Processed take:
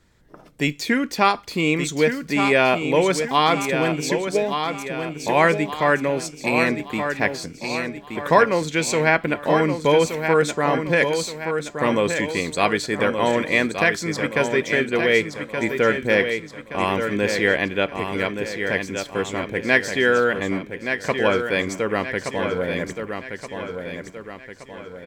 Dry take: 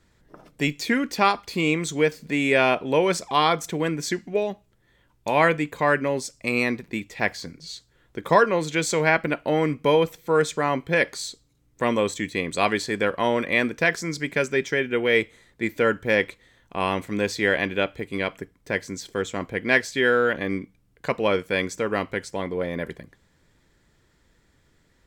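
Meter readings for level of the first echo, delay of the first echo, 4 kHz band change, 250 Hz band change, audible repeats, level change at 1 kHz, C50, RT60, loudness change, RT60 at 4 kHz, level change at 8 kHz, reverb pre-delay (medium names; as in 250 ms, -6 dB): -7.0 dB, 1173 ms, +3.0 dB, +3.0 dB, 5, +3.0 dB, no reverb, no reverb, +2.5 dB, no reverb, +3.0 dB, no reverb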